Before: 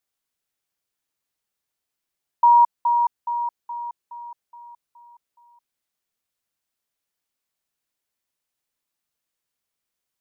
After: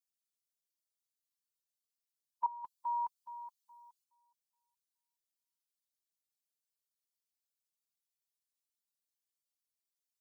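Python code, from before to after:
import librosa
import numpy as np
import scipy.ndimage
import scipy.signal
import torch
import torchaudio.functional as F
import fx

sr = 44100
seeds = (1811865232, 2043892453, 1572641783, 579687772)

y = fx.bin_expand(x, sr, power=2.0)
y = fx.peak_eq(y, sr, hz=820.0, db=-13.5, octaves=1.4)
y = fx.over_compress(y, sr, threshold_db=-33.0, ratio=-0.5, at=(2.46, 4.04))
y = y * 10.0 ** (-2.5 / 20.0)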